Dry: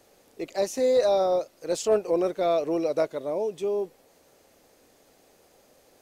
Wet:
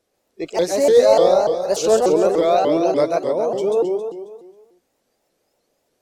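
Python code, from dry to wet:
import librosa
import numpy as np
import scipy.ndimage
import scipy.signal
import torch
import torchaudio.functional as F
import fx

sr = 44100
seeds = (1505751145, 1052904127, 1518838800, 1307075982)

y = fx.noise_reduce_blind(x, sr, reduce_db=19)
y = fx.echo_feedback(y, sr, ms=135, feedback_pct=53, wet_db=-3.0)
y = fx.vibrato_shape(y, sr, shape='saw_up', rate_hz=3.4, depth_cents=250.0)
y = y * librosa.db_to_amplitude(6.5)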